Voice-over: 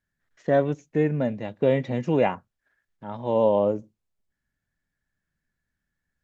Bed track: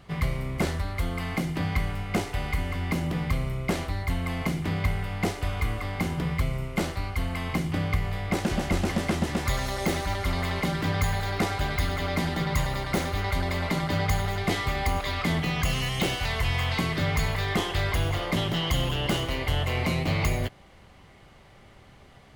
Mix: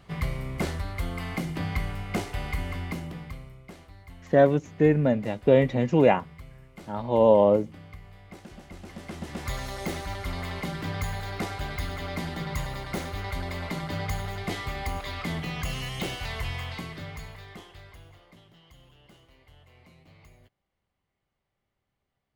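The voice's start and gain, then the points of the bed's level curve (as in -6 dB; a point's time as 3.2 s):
3.85 s, +2.5 dB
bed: 2.75 s -2.5 dB
3.66 s -19 dB
8.74 s -19 dB
9.5 s -5.5 dB
16.42 s -5.5 dB
18.49 s -29.5 dB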